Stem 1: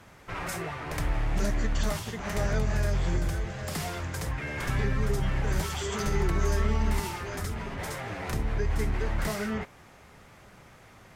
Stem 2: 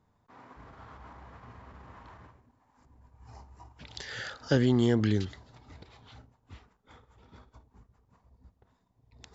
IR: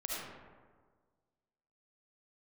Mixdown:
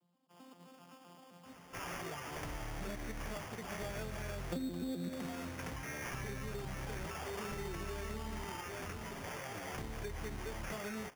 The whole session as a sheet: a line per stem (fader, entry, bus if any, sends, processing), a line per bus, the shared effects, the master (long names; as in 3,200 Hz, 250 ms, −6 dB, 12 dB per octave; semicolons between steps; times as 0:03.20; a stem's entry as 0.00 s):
−6.5 dB, 1.45 s, no send, no processing
−2.0 dB, 0.00 s, send −11.5 dB, vocoder with an arpeggio as carrier bare fifth, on F3, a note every 130 ms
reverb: on, RT60 1.6 s, pre-delay 30 ms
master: low-shelf EQ 110 Hz −10.5 dB; sample-rate reduction 4,000 Hz, jitter 0%; downward compressor 5 to 1, threshold −38 dBFS, peak gain reduction 14.5 dB